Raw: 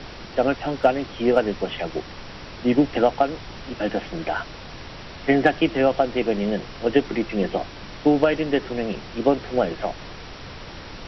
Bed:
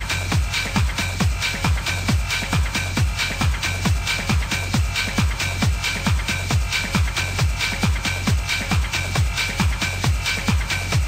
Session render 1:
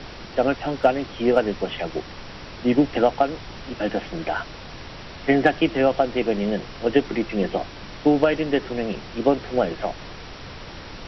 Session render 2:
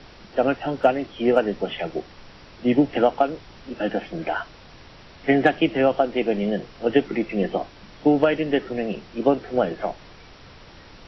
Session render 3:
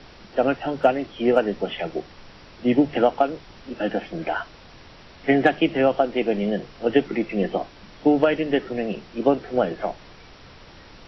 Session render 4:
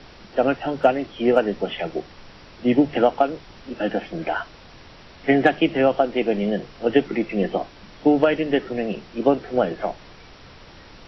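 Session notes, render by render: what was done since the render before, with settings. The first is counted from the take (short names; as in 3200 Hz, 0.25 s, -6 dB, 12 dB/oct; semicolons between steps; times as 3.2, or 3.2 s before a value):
nothing audible
noise print and reduce 8 dB
notches 50/100/150 Hz
gain +1 dB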